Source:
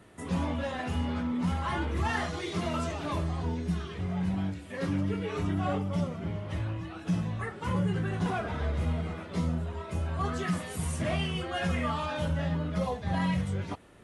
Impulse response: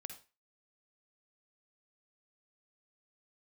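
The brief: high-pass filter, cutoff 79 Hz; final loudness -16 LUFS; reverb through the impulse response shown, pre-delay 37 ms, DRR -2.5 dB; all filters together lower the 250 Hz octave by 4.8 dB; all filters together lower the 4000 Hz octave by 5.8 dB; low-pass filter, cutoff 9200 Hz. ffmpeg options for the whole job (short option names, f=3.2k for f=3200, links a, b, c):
-filter_complex "[0:a]highpass=79,lowpass=9.2k,equalizer=f=250:t=o:g=-7.5,equalizer=f=4k:t=o:g=-8.5,asplit=2[a][b];[1:a]atrim=start_sample=2205,adelay=37[c];[b][c]afir=irnorm=-1:irlink=0,volume=6.5dB[d];[a][d]amix=inputs=2:normalize=0,volume=13.5dB"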